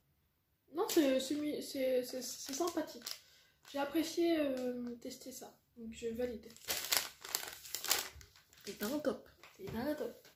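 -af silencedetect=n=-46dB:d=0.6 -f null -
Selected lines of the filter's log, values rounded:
silence_start: 0.00
silence_end: 0.75 | silence_duration: 0.75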